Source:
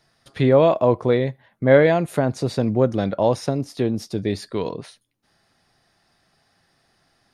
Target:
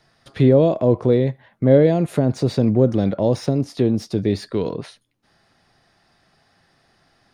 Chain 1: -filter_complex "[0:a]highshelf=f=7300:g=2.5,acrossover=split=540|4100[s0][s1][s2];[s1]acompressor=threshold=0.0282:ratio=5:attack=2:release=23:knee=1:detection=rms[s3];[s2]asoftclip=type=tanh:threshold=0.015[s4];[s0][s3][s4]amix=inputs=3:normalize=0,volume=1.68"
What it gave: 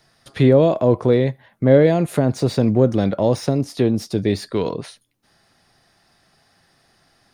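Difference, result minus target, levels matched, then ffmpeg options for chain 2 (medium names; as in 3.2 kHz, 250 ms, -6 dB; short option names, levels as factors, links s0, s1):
compression: peak gain reduction -6.5 dB; 8 kHz band +4.0 dB
-filter_complex "[0:a]highshelf=f=7300:g=-9,acrossover=split=540|4100[s0][s1][s2];[s1]acompressor=threshold=0.0112:ratio=5:attack=2:release=23:knee=1:detection=rms[s3];[s2]asoftclip=type=tanh:threshold=0.015[s4];[s0][s3][s4]amix=inputs=3:normalize=0,volume=1.68"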